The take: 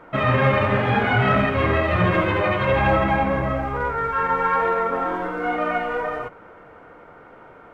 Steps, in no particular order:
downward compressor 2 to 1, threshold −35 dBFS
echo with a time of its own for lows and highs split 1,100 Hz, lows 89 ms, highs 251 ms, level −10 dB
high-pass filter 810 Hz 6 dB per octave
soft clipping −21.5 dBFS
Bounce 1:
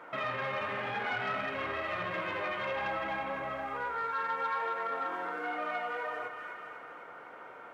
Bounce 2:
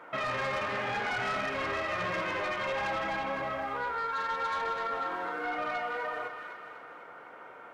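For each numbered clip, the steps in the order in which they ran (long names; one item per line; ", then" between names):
echo with a time of its own for lows and highs, then downward compressor, then soft clipping, then high-pass filter
high-pass filter, then soft clipping, then echo with a time of its own for lows and highs, then downward compressor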